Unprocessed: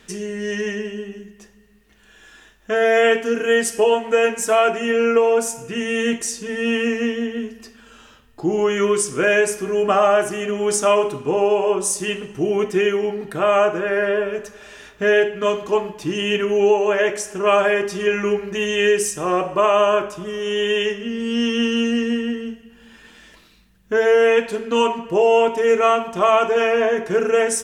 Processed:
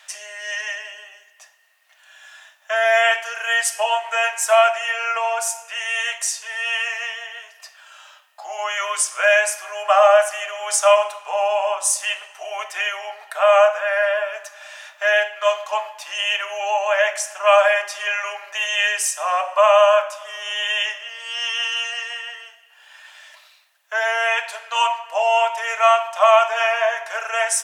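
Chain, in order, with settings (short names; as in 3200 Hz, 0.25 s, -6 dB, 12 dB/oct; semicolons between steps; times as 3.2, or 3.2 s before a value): Chebyshev high-pass 600 Hz, order 6; gain +3.5 dB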